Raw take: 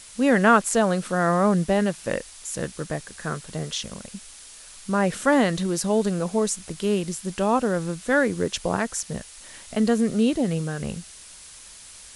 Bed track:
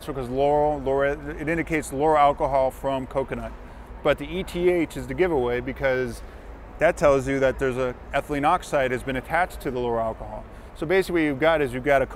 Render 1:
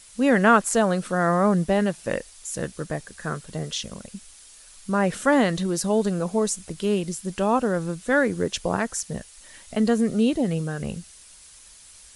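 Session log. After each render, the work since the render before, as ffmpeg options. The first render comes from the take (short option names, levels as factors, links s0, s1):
-af "afftdn=nr=6:nf=-45"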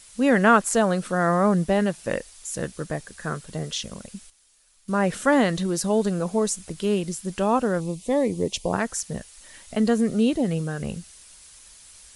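-filter_complex "[0:a]asettb=1/sr,asplit=3[s0][s1][s2];[s0]atrim=end=7.804[s3];[s1]atrim=start=7.8:end=8.73,asetpts=PTS-STARTPTS,afade=t=in:d=0.004:c=qsin,afade=t=out:st=0.926:d=0.004:c=qsin,asuperstop=centerf=1500:order=4:qfactor=1.2[s4];[s2]atrim=start=8.726[s5];[s3][s4]acrossfade=d=0.004:c1=hsin:c2=qsin[s6];[s6][s5]acrossfade=d=0.004:c1=qsin:c2=hsin,asplit=3[s7][s8][s9];[s7]atrim=end=4.3,asetpts=PTS-STARTPTS,afade=t=out:st=4.08:d=0.22:c=log:silence=0.237137[s10];[s8]atrim=start=4.3:end=4.88,asetpts=PTS-STARTPTS,volume=0.237[s11];[s9]atrim=start=4.88,asetpts=PTS-STARTPTS,afade=t=in:d=0.22:c=log:silence=0.237137[s12];[s10][s11][s12]concat=n=3:v=0:a=1"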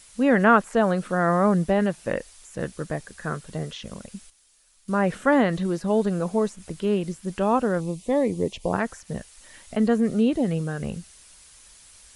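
-filter_complex "[0:a]acrossover=split=2800[s0][s1];[s1]acompressor=threshold=0.00501:ratio=4:attack=1:release=60[s2];[s0][s2]amix=inputs=2:normalize=0"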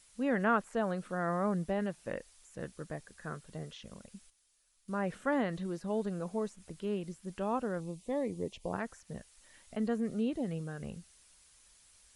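-af "volume=0.251"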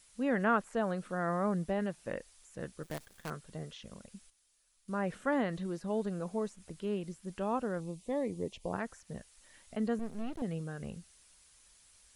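-filter_complex "[0:a]asettb=1/sr,asplit=3[s0][s1][s2];[s0]atrim=end=2.834[s3];[s1]atrim=start=2.83:end=3.3,asetpts=PTS-STARTPTS,afade=t=in:d=0.004:c=qsin,afade=t=out:st=0.466:d=0.004:c=qsin,acrusher=bits=7:dc=4:mix=0:aa=0.000001[s4];[s2]atrim=start=3.296[s5];[s3][s4]acrossfade=d=0.004:c1=hsin:c2=qsin[s6];[s6][s5]acrossfade=d=0.004:c1=qsin:c2=hsin,asettb=1/sr,asplit=3[s7][s8][s9];[s7]atrim=end=9.994[s10];[s8]atrim=start=9.99:end=10.42,asetpts=PTS-STARTPTS,afade=t=in:d=0.004:c=qsin,afade=t=out:st=0.426:d=0.004:c=qsin,aeval=exprs='max(val(0),0)':c=same[s11];[s9]atrim=start=10.416[s12];[s10][s11]acrossfade=d=0.004:c1=hsin:c2=qsin[s13];[s13][s12]acrossfade=d=0.004:c1=qsin:c2=hsin"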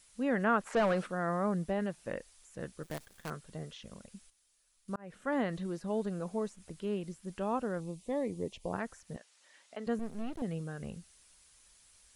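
-filter_complex "[0:a]asplit=3[s0][s1][s2];[s0]afade=t=out:st=0.65:d=0.02[s3];[s1]asplit=2[s4][s5];[s5]highpass=f=720:p=1,volume=12.6,asoftclip=type=tanh:threshold=0.1[s6];[s4][s6]amix=inputs=2:normalize=0,lowpass=f=2200:p=1,volume=0.501,afade=t=in:st=0.65:d=0.02,afade=t=out:st=1.05:d=0.02[s7];[s2]afade=t=in:st=1.05:d=0.02[s8];[s3][s7][s8]amix=inputs=3:normalize=0,asettb=1/sr,asplit=3[s9][s10][s11];[s9]atrim=end=9.164[s12];[s10]atrim=start=9.16:end=9.87,asetpts=PTS-STARTPTS,afade=t=in:d=0.004:c=qsin,afade=t=out:st=0.706:d=0.004:c=qsin,highpass=440,lowpass=6900[s13];[s11]atrim=start=9.866[s14];[s12][s13]acrossfade=d=0.004:c1=hsin:c2=qsin[s15];[s15][s14]acrossfade=d=0.004:c1=qsin:c2=hsin,asplit=2[s16][s17];[s16]atrim=end=4.96,asetpts=PTS-STARTPTS,afade=t=out:st=4.956:d=0.004:c=hsin[s18];[s17]atrim=start=4.96,asetpts=PTS-STARTPTS,afade=t=in:d=0.45[s19];[s18][s19]concat=n=2:v=0:a=1"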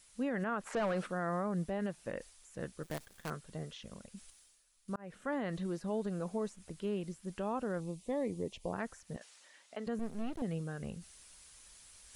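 -af "alimiter=level_in=1.41:limit=0.0631:level=0:latency=1:release=67,volume=0.708,areverse,acompressor=mode=upward:threshold=0.00316:ratio=2.5,areverse"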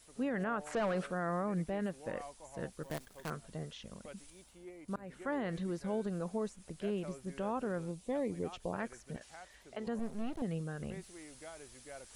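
-filter_complex "[1:a]volume=0.0299[s0];[0:a][s0]amix=inputs=2:normalize=0"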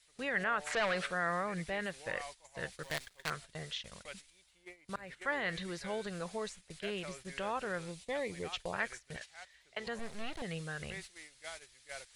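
-af "agate=range=0.224:threshold=0.00355:ratio=16:detection=peak,equalizer=f=250:t=o:w=1:g=-10,equalizer=f=2000:t=o:w=1:g=10,equalizer=f=4000:t=o:w=1:g=10,equalizer=f=8000:t=o:w=1:g=4"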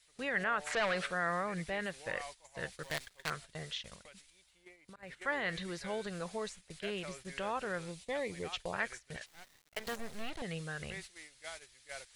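-filter_complex "[0:a]asettb=1/sr,asplit=3[s0][s1][s2];[s0]atrim=end=3.944[s3];[s1]atrim=start=3.94:end=5.03,asetpts=PTS-STARTPTS,afade=t=in:d=0.004:c=qsin,afade=t=out:st=1.086:d=0.004:c=qsin,acompressor=threshold=0.00282:ratio=6:attack=3.2:release=140:knee=1:detection=peak[s4];[s2]atrim=start=5.026[s5];[s3][s4]acrossfade=d=0.004:c1=hsin:c2=qsin[s6];[s6][s5]acrossfade=d=0.004:c1=qsin:c2=hsin,asettb=1/sr,asplit=3[s7][s8][s9];[s7]atrim=end=9.264[s10];[s8]atrim=start=9.26:end=10.3,asetpts=PTS-STARTPTS,afade=t=in:d=0.004:c=qsin,afade=t=out:st=1.036:d=0.004:c=qsin,acrusher=bits=7:dc=4:mix=0:aa=0.000001[s11];[s9]atrim=start=10.296[s12];[s10][s11]acrossfade=d=0.004:c1=hsin:c2=qsin[s13];[s13][s12]acrossfade=d=0.004:c1=qsin:c2=hsin"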